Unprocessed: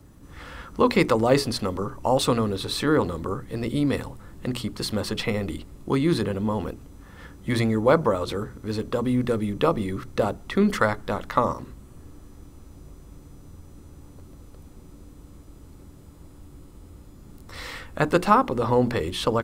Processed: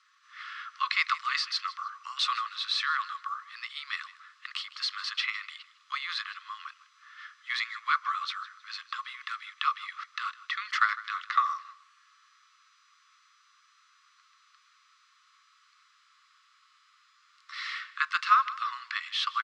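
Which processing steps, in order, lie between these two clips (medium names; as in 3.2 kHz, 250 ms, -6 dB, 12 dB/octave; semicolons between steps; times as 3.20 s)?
Chebyshev high-pass 1.1 kHz, order 8; on a send: feedback delay 156 ms, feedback 29%, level -19 dB; on the sum: short-mantissa float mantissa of 4-bit; in parallel at -9 dB: saturation -28.5 dBFS, distortion -6 dB; on the sum: low-pass 5.1 kHz 24 dB/octave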